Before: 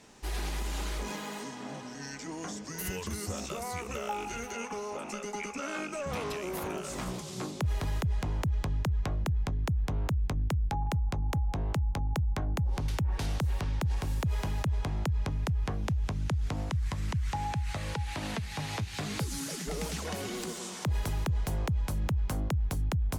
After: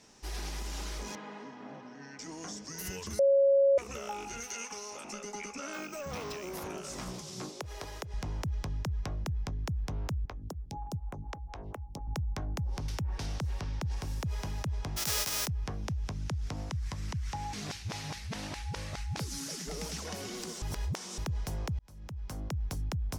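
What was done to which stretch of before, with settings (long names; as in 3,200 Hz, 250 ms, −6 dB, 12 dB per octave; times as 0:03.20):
0:01.15–0:02.19: band-pass filter 150–2,200 Hz
0:03.19–0:03.78: beep over 552 Hz −15.5 dBFS
0:04.40–0:05.05: tilt shelving filter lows −6 dB, about 1,400 Hz
0:05.73–0:06.52: bad sample-rate conversion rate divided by 2×, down filtered, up hold
0:07.49–0:08.14: low shelf with overshoot 280 Hz −10 dB, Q 1.5
0:10.25–0:12.08: phaser with staggered stages 4.1 Hz
0:13.18–0:13.92: high-shelf EQ 10,000 Hz −7.5 dB
0:14.96–0:15.46: spectral envelope flattened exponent 0.1
0:17.53–0:19.17: reverse
0:20.62–0:21.18: reverse
0:21.79–0:22.62: fade in
whole clip: parametric band 5,500 Hz +8 dB 0.49 octaves; level −4.5 dB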